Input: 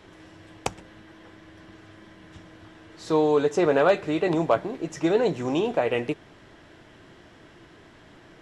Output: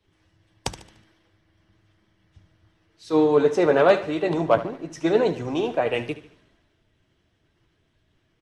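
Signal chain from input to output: coarse spectral quantiser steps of 15 dB; band-stop 7.2 kHz, Q 7.7; on a send: feedback delay 74 ms, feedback 51%, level -13 dB; on the sum: three bands expanded up and down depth 70%

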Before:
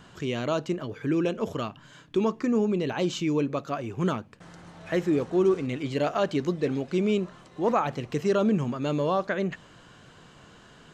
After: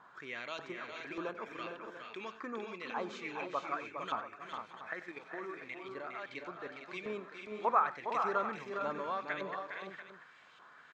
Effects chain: LFO band-pass saw up 1.7 Hz 980–3000 Hz; band-stop 2.9 kHz, Q 6.3; 4.93–6.86 s: level held to a coarse grid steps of 11 dB; on a send: multi-tap echo 92/410/457/611/690 ms -16.5/-7/-8/-18.5/-13.5 dB; on the sum: trim +1 dB

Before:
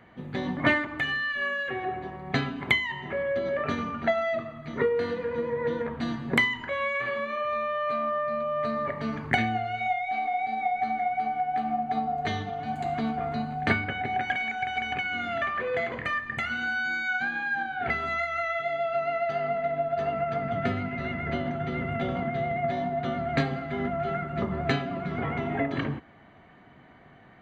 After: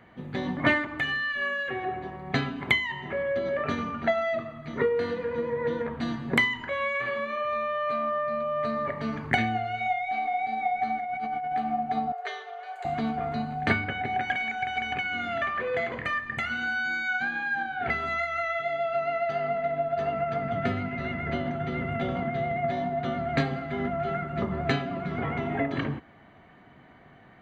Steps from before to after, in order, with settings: 10.99–11.55 s: compressor with a negative ratio -31 dBFS, ratio -1; 12.12–12.85 s: rippled Chebyshev high-pass 380 Hz, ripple 6 dB

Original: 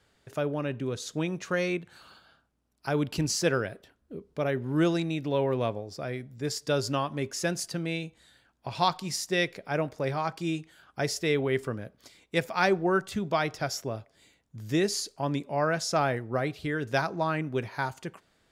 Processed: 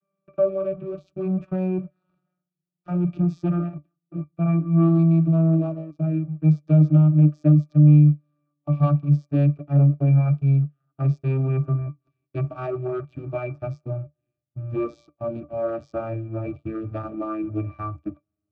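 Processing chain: vocoder on a note that slides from G3, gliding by -11 st; waveshaping leveller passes 3; pitch-class resonator D, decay 0.12 s; trim +7 dB

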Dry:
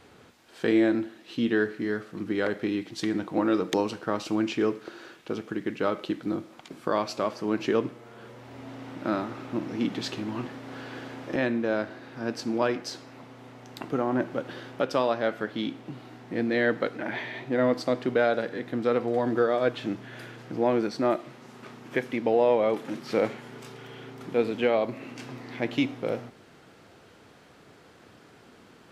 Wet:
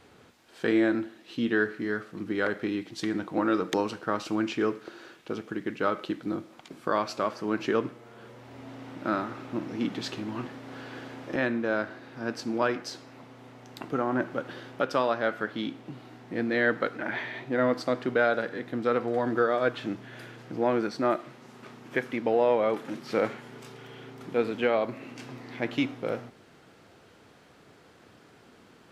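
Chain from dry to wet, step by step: dynamic bell 1.4 kHz, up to +6 dB, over -43 dBFS, Q 1.8; trim -2 dB

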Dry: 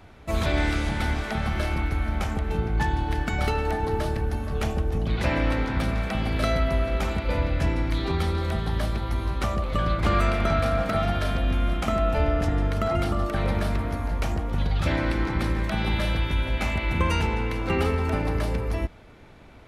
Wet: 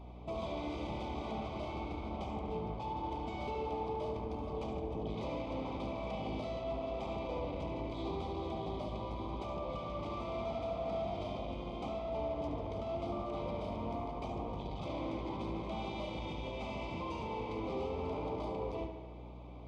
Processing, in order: bass shelf 250 Hz -9 dB; compression, threshold -29 dBFS, peak gain reduction 8.5 dB; hard clipper -35 dBFS, distortion -8 dB; Butterworth band-stop 1.7 kHz, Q 1.4; comb of notches 1.4 kHz; tape echo 72 ms, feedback 72%, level -6.5 dB, low-pass 5.2 kHz; hum 60 Hz, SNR 12 dB; tape spacing loss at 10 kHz 27 dB; trim +1.5 dB

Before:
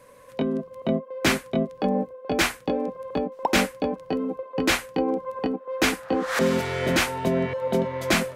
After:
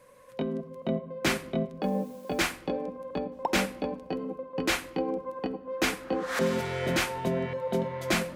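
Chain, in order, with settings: 1.82–2.50 s: added noise white -55 dBFS; on a send: reverberation RT60 0.95 s, pre-delay 6 ms, DRR 12 dB; on the sum: trim -5.5 dB

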